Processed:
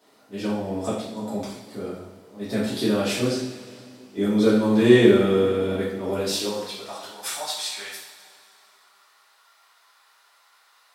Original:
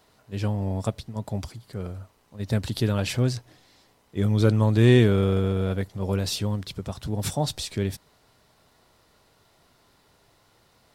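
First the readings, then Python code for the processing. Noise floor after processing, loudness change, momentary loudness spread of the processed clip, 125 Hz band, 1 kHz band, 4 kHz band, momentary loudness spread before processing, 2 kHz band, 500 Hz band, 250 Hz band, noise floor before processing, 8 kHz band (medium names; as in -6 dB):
-59 dBFS, +2.0 dB, 19 LU, -9.0 dB, +3.0 dB, +3.5 dB, 18 LU, +4.0 dB, +5.5 dB, +4.0 dB, -63 dBFS, +3.5 dB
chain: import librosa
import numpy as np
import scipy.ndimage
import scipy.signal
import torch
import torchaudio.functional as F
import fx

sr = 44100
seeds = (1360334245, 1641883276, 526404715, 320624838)

y = fx.filter_sweep_highpass(x, sr, from_hz=270.0, to_hz=1200.0, start_s=6.25, end_s=7.13, q=1.7)
y = fx.rev_double_slope(y, sr, seeds[0], early_s=0.62, late_s=2.7, knee_db=-16, drr_db=-9.5)
y = y * 10.0 ** (-6.5 / 20.0)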